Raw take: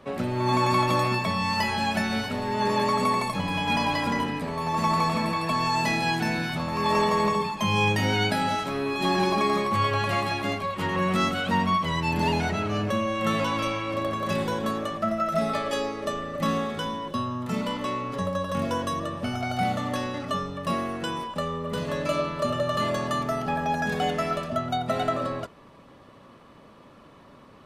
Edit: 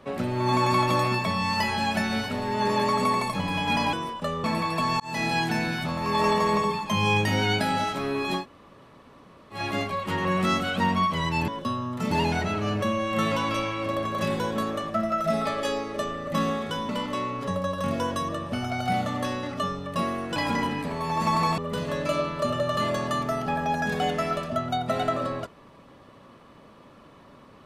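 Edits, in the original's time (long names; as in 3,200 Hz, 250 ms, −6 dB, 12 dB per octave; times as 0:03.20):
0:03.93–0:05.15: swap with 0:21.07–0:21.58
0:05.71–0:05.98: fade in
0:09.09–0:10.29: fill with room tone, crossfade 0.16 s
0:16.97–0:17.60: move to 0:12.19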